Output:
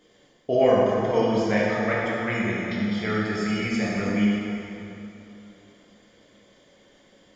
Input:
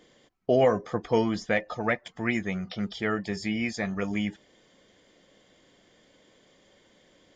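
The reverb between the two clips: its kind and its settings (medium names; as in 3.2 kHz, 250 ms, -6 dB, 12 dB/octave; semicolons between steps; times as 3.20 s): plate-style reverb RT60 3.1 s, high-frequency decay 0.7×, DRR -6.5 dB; trim -3.5 dB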